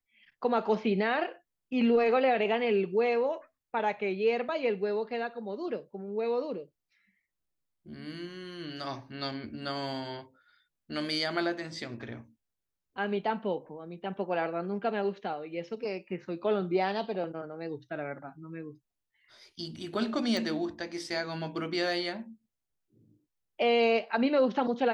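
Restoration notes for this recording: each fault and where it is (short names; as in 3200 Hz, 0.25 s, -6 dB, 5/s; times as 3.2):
20.37 pop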